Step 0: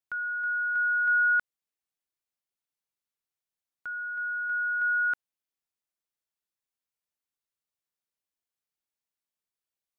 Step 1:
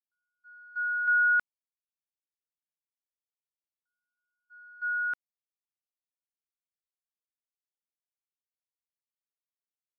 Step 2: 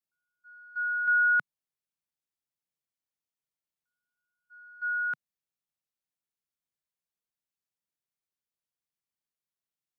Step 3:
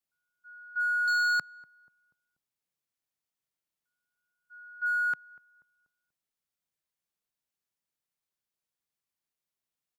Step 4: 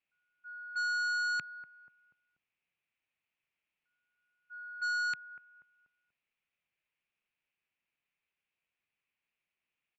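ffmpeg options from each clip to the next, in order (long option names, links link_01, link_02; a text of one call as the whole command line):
ffmpeg -i in.wav -af "agate=range=-56dB:threshold=-26dB:ratio=16:detection=peak" out.wav
ffmpeg -i in.wav -af "equalizer=frequency=150:width=1.2:gain=8" out.wav
ffmpeg -i in.wav -filter_complex "[0:a]asoftclip=type=hard:threshold=-27dB,asplit=2[link_01][link_02];[link_02]adelay=242,lowpass=frequency=1000:poles=1,volume=-21dB,asplit=2[link_03][link_04];[link_04]adelay=242,lowpass=frequency=1000:poles=1,volume=0.49,asplit=2[link_05][link_06];[link_06]adelay=242,lowpass=frequency=1000:poles=1,volume=0.49,asplit=2[link_07][link_08];[link_08]adelay=242,lowpass=frequency=1000:poles=1,volume=0.49[link_09];[link_01][link_03][link_05][link_07][link_09]amix=inputs=5:normalize=0,volume=2dB" out.wav
ffmpeg -i in.wav -af "lowpass=frequency=2500:width_type=q:width=5,aresample=16000,asoftclip=type=tanh:threshold=-31dB,aresample=44100" out.wav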